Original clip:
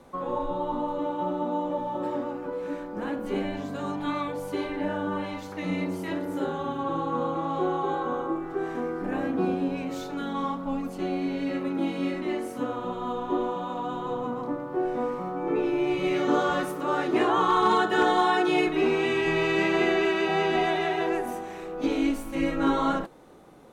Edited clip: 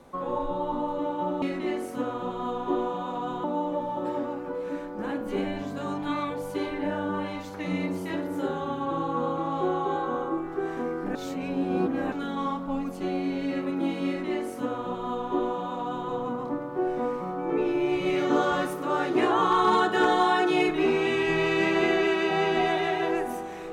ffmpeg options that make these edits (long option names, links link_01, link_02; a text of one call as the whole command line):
ffmpeg -i in.wav -filter_complex "[0:a]asplit=5[link_01][link_02][link_03][link_04][link_05];[link_01]atrim=end=1.422[link_06];[link_02]atrim=start=12.038:end=14.062[link_07];[link_03]atrim=start=1.418:end=9.132[link_08];[link_04]atrim=start=9.128:end=10.102,asetpts=PTS-STARTPTS,areverse[link_09];[link_05]atrim=start=10.098[link_10];[link_06][link_07]acrossfade=duration=0.004:curve1=hsin:curve2=hsin[link_11];[link_11][link_08]acrossfade=duration=0.004:curve1=hsin:curve2=hsin[link_12];[link_12][link_09]acrossfade=duration=0.004:curve1=hsin:curve2=hsin[link_13];[link_13][link_10]acrossfade=duration=0.004:curve1=hsin:curve2=hsin" out.wav